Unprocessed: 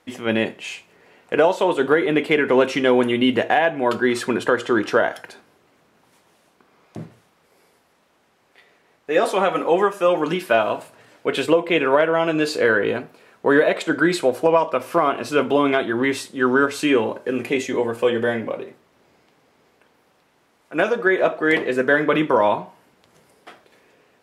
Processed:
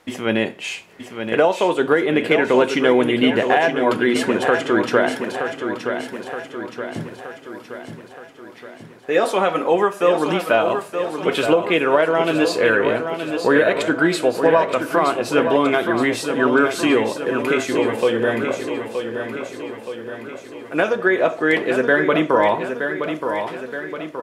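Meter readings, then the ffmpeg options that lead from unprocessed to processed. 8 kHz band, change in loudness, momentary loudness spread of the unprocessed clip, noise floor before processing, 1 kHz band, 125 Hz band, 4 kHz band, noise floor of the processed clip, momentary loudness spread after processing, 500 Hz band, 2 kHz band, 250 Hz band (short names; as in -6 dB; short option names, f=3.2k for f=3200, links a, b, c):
+2.5 dB, +0.5 dB, 8 LU, -62 dBFS, +1.5 dB, +2.0 dB, +2.0 dB, -40 dBFS, 14 LU, +1.5 dB, +1.5 dB, +2.0 dB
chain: -filter_complex "[0:a]asplit=2[a][b];[b]acompressor=threshold=-30dB:ratio=6,volume=1dB[c];[a][c]amix=inputs=2:normalize=0,aecho=1:1:922|1844|2766|3688|4610|5532|6454:0.422|0.232|0.128|0.0702|0.0386|0.0212|0.0117,volume=-1dB"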